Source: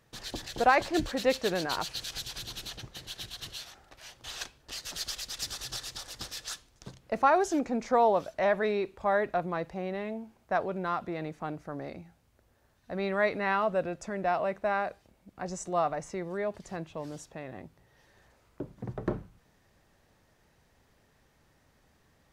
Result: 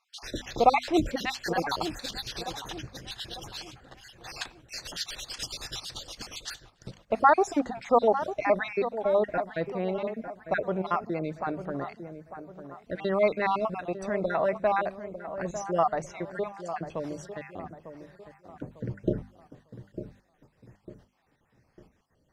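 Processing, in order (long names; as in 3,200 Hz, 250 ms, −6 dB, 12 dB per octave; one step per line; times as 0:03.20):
time-frequency cells dropped at random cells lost 47%
high-shelf EQ 8,000 Hz −9.5 dB
on a send: delay with a low-pass on its return 900 ms, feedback 40%, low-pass 1,500 Hz, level −11 dB
on the sum: noise gate −59 dBFS, range −7 dB
mains-hum notches 50/100/150/200/250 Hz
level +5 dB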